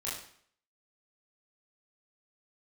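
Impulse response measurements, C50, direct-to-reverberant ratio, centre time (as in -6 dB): 3.5 dB, -8.0 dB, 48 ms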